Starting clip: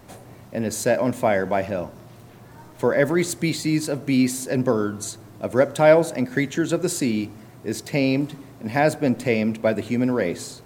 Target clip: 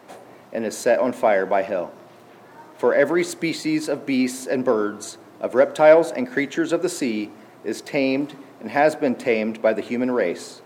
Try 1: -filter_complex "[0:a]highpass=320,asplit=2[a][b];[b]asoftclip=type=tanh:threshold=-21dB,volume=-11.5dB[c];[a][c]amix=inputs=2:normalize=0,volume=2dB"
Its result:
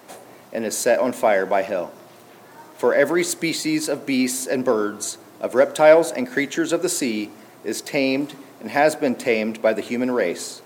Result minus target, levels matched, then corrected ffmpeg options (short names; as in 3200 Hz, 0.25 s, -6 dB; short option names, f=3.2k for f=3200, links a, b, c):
8000 Hz band +7.5 dB
-filter_complex "[0:a]highpass=320,highshelf=f=4.7k:g=-11,asplit=2[a][b];[b]asoftclip=type=tanh:threshold=-21dB,volume=-11.5dB[c];[a][c]amix=inputs=2:normalize=0,volume=2dB"